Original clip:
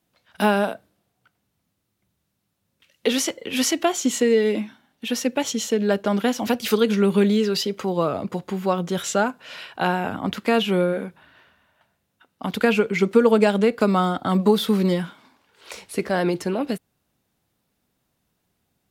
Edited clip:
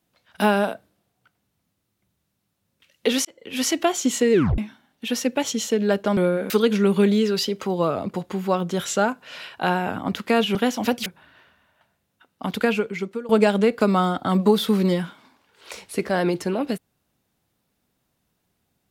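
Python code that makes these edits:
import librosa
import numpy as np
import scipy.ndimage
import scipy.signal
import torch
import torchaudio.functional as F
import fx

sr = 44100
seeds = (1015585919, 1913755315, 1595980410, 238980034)

y = fx.edit(x, sr, fx.fade_in_span(start_s=3.25, length_s=0.49),
    fx.tape_stop(start_s=4.33, length_s=0.25),
    fx.swap(start_s=6.17, length_s=0.51, other_s=10.73, other_length_s=0.33),
    fx.fade_out_to(start_s=12.49, length_s=0.8, floor_db=-23.5), tone=tone)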